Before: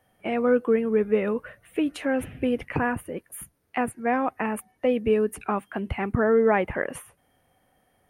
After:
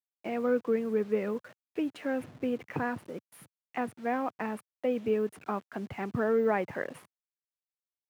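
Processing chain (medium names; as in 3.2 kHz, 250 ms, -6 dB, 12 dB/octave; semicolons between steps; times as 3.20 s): send-on-delta sampling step -40 dBFS; high-pass 110 Hz 24 dB/octave; treble shelf 5.6 kHz -11.5 dB; trim -6.5 dB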